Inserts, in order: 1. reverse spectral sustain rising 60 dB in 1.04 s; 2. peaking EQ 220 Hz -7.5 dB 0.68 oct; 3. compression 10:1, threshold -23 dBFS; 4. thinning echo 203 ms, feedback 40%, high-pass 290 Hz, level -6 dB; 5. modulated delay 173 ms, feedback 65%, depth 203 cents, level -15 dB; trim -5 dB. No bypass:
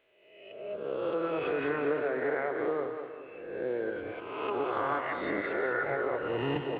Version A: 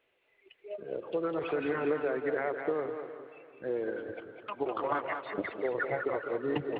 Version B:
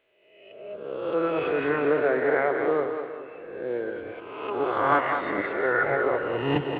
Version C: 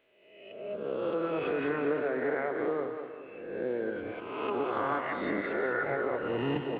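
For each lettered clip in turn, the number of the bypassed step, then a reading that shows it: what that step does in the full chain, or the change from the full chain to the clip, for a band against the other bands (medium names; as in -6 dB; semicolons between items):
1, 250 Hz band +2.0 dB; 3, mean gain reduction 4.0 dB; 2, 250 Hz band +2.5 dB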